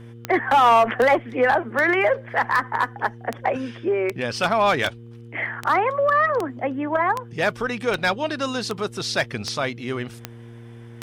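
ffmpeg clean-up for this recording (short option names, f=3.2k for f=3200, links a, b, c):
-af "adeclick=t=4,bandreject=f=116.9:t=h:w=4,bandreject=f=233.8:t=h:w=4,bandreject=f=350.7:t=h:w=4,bandreject=f=467.6:t=h:w=4"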